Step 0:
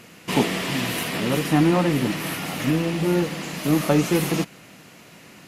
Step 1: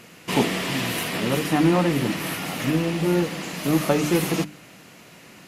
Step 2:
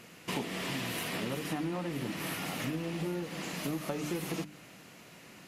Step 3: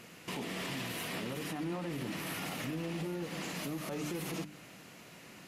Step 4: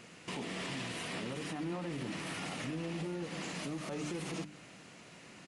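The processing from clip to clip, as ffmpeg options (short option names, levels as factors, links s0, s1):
-af "bandreject=f=50:t=h:w=6,bandreject=f=100:t=h:w=6,bandreject=f=150:t=h:w=6,bandreject=f=200:t=h:w=6,bandreject=f=250:t=h:w=6,bandreject=f=300:t=h:w=6"
-af "acompressor=threshold=0.0501:ratio=6,volume=0.501"
-af "alimiter=level_in=1.88:limit=0.0631:level=0:latency=1:release=33,volume=0.531"
-af "aresample=22050,aresample=44100,volume=0.891"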